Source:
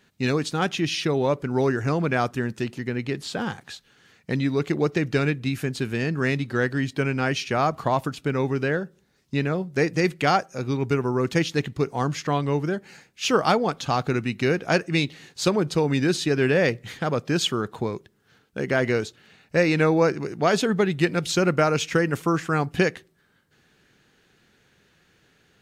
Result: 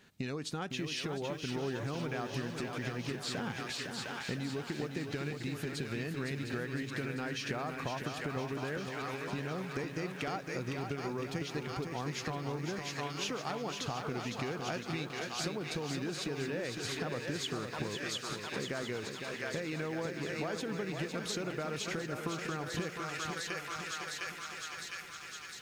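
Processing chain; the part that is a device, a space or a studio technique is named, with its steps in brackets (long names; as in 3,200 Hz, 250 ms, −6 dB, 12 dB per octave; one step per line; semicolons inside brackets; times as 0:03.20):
feedback echo with a high-pass in the loop 706 ms, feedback 74%, high-pass 1,200 Hz, level −7 dB
serial compression, peaks first (downward compressor, threshold −30 dBFS, peak gain reduction 15 dB; downward compressor 2.5 to 1, threshold −35 dBFS, peak gain reduction 6 dB)
feedback echo at a low word length 508 ms, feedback 55%, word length 10 bits, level −6 dB
level −1 dB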